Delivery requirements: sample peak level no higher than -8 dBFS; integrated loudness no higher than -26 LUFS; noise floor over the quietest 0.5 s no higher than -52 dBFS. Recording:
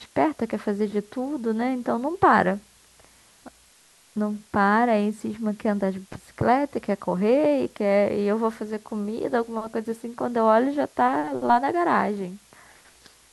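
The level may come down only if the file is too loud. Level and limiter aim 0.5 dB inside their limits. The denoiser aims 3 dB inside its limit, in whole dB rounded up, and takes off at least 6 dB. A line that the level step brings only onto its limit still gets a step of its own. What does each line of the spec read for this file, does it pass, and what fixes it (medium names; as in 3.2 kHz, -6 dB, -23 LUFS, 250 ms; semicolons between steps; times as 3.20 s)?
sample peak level -5.0 dBFS: fail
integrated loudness -24.0 LUFS: fail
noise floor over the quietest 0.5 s -56 dBFS: pass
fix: trim -2.5 dB; peak limiter -8.5 dBFS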